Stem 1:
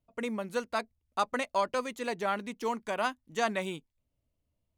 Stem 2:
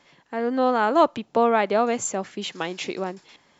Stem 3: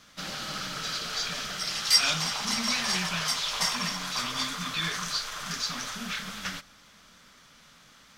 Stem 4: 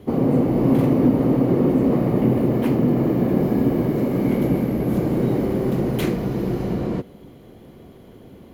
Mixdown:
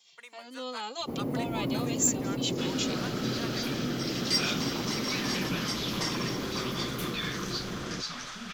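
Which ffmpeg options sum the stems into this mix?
-filter_complex "[0:a]highpass=1.2k,volume=-7.5dB[a];[1:a]lowshelf=f=230:g=-9.5,aexciter=amount=9.4:drive=4.7:freq=2.6k,asplit=2[b][c];[c]adelay=2.1,afreqshift=-1[d];[b][d]amix=inputs=2:normalize=1,volume=-14dB[e];[2:a]lowpass=6.7k,adelay=2400,volume=-4dB[f];[3:a]highshelf=f=4.5k:g=11.5,adelay=1000,volume=-14dB[g];[a][e][f][g]amix=inputs=4:normalize=0,asoftclip=type=tanh:threshold=-16.5dB"

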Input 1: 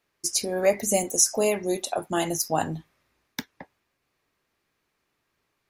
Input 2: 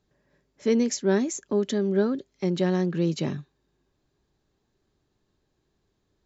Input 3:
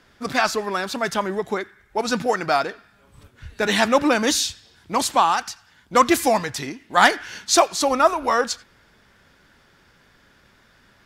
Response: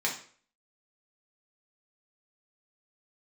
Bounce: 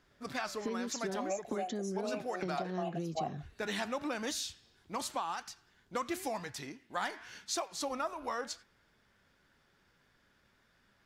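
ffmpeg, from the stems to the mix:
-filter_complex "[0:a]asplit=3[a][b][c];[a]bandpass=f=730:t=q:w=8,volume=0dB[d];[b]bandpass=f=1.09k:t=q:w=8,volume=-6dB[e];[c]bandpass=f=2.44k:t=q:w=8,volume=-9dB[f];[d][e][f]amix=inputs=3:normalize=0,adelay=650,volume=-0.5dB[g];[1:a]acompressor=threshold=-30dB:ratio=6,volume=-2dB[h];[2:a]flanger=delay=4.5:depth=6:regen=88:speed=0.92:shape=triangular,volume=-9.5dB[i];[g][h][i]amix=inputs=3:normalize=0,acompressor=threshold=-33dB:ratio=4"

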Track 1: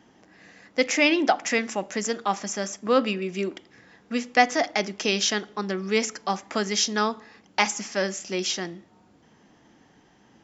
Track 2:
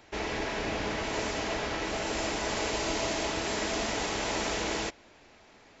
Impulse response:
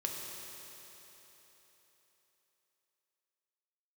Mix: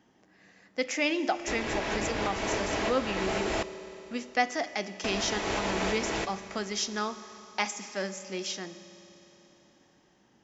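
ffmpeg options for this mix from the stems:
-filter_complex "[0:a]volume=-10dB,asplit=3[a][b][c];[b]volume=-10dB[d];[1:a]acrossover=split=3300[e][f];[f]acompressor=threshold=-43dB:ratio=4:attack=1:release=60[g];[e][g]amix=inputs=2:normalize=0,adelay=1350,volume=1dB,asplit=3[h][i][j];[h]atrim=end=3.63,asetpts=PTS-STARTPTS,afade=t=out:st=3.626:d=0.004:c=hsin[k];[i]atrim=start=3.63:end=5.04,asetpts=PTS-STARTPTS,volume=0[l];[j]atrim=start=5.04,asetpts=PTS-STARTPTS,afade=t=in:d=0.004:c=hsin[m];[k][l][m]concat=n=3:v=0:a=1,asplit=2[n][o];[o]volume=-12dB[p];[c]apad=whole_len=315327[q];[n][q]sidechaincompress=threshold=-36dB:ratio=8:attack=16:release=224[r];[2:a]atrim=start_sample=2205[s];[d][p]amix=inputs=2:normalize=0[t];[t][s]afir=irnorm=-1:irlink=0[u];[a][r][u]amix=inputs=3:normalize=0"

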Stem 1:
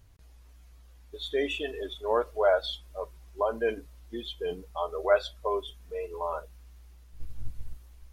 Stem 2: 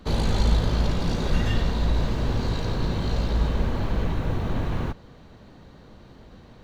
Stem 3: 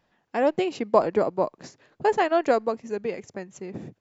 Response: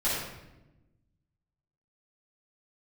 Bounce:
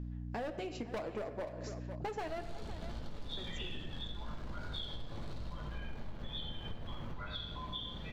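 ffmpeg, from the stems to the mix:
-filter_complex "[0:a]highpass=f=1.1k:w=0.5412,highpass=f=1.1k:w=1.3066,acompressor=threshold=-50dB:ratio=2,lowpass=f=3.4k:t=q:w=5.2,adelay=2100,volume=-7.5dB,asplit=2[a][b];[b]volume=-3dB[c];[1:a]alimiter=limit=-19.5dB:level=0:latency=1:release=284,asoftclip=type=tanh:threshold=-36dB,adelay=2200,volume=-4.5dB,asplit=2[d][e];[e]volume=-7dB[f];[2:a]flanger=delay=2.6:depth=5.4:regen=-50:speed=0.64:shape=triangular,asoftclip=type=hard:threshold=-25dB,aeval=exprs='val(0)+0.00708*(sin(2*PI*60*n/s)+sin(2*PI*2*60*n/s)/2+sin(2*PI*3*60*n/s)/3+sin(2*PI*4*60*n/s)/4+sin(2*PI*5*60*n/s)/5)':c=same,volume=0dB,asplit=3[g][h][i];[g]atrim=end=2.44,asetpts=PTS-STARTPTS,afade=t=out:st=2.436:d=0.004:c=hsin[j];[h]atrim=start=2.44:end=3.37,asetpts=PTS-STARTPTS,volume=0[k];[i]atrim=start=3.37,asetpts=PTS-STARTPTS,afade=t=in:d=0.004:c=hsin[l];[j][k][l]concat=n=3:v=0:a=1,asplit=3[m][n][o];[n]volume=-19.5dB[p];[o]volume=-16dB[q];[3:a]atrim=start_sample=2205[r];[c][f][p]amix=inputs=3:normalize=0[s];[s][r]afir=irnorm=-1:irlink=0[t];[q]aecho=0:1:504:1[u];[a][d][m][t][u]amix=inputs=5:normalize=0,aeval=exprs='val(0)+0.00447*(sin(2*PI*60*n/s)+sin(2*PI*2*60*n/s)/2+sin(2*PI*3*60*n/s)/3+sin(2*PI*4*60*n/s)/4+sin(2*PI*5*60*n/s)/5)':c=same,acompressor=threshold=-38dB:ratio=6"

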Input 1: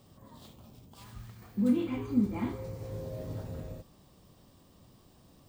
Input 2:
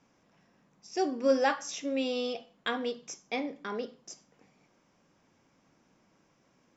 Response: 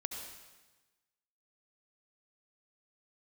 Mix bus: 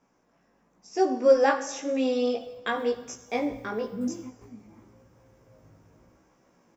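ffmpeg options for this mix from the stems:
-filter_complex "[0:a]adelay=2350,volume=-8.5dB,asplit=2[a][b];[b]volume=-19.5dB[c];[1:a]equalizer=f=120:t=o:w=1.4:g=-7,volume=2dB,asplit=3[d][e][f];[e]volume=-7dB[g];[f]apad=whole_len=345355[h];[a][h]sidechaingate=range=-18dB:threshold=-59dB:ratio=16:detection=peak[i];[2:a]atrim=start_sample=2205[j];[c][g]amix=inputs=2:normalize=0[k];[k][j]afir=irnorm=-1:irlink=0[l];[i][d][l]amix=inputs=3:normalize=0,equalizer=f=3.5k:w=0.76:g=-9,dynaudnorm=f=170:g=9:m=5dB,flanger=delay=15.5:depth=2.8:speed=0.95"

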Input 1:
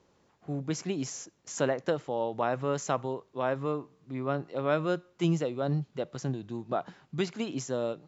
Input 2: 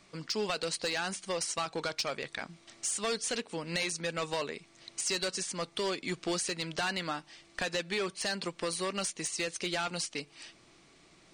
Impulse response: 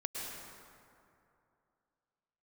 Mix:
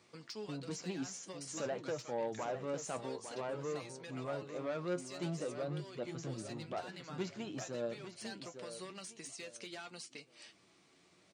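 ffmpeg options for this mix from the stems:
-filter_complex "[0:a]asoftclip=type=tanh:threshold=-25.5dB,volume=-3dB,asplit=3[a][b][c];[b]volume=-9dB[d];[1:a]acompressor=threshold=-40dB:ratio=3,volume=-3dB[e];[c]apad=whole_len=499851[f];[e][f]sidechaincompress=threshold=-37dB:ratio=8:attack=16:release=774[g];[d]aecho=0:1:854|1708|2562|3416:1|0.31|0.0961|0.0298[h];[a][g][h]amix=inputs=3:normalize=0,highpass=90,flanger=delay=8.3:depth=2.9:regen=52:speed=0.5:shape=sinusoidal"

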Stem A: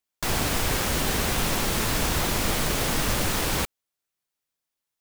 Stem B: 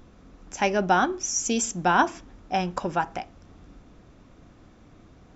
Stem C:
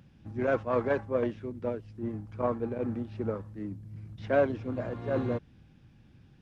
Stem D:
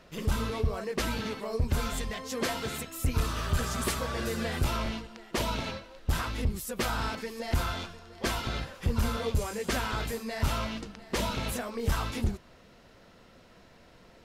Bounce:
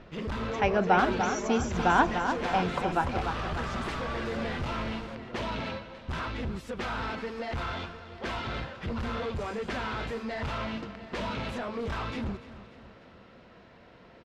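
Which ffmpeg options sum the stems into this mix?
-filter_complex "[0:a]adelay=1500,volume=-18.5dB[a];[1:a]volume=-2.5dB,asplit=2[b][c];[c]volume=-7dB[d];[2:a]volume=-17dB[e];[3:a]highpass=f=78:p=1,asoftclip=type=hard:threshold=-33dB,volume=3dB,asplit=2[f][g];[g]volume=-15.5dB[h];[d][h]amix=inputs=2:normalize=0,aecho=0:1:295|590|885|1180|1475|1770|2065|2360:1|0.53|0.281|0.149|0.0789|0.0418|0.0222|0.0117[i];[a][b][e][f][i]amix=inputs=5:normalize=0,lowpass=3.1k"

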